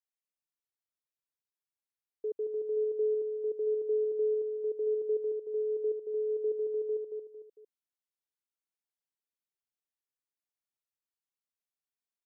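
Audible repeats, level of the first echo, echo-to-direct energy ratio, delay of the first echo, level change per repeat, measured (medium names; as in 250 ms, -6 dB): 3, -5.5 dB, -5.0 dB, 226 ms, -8.0 dB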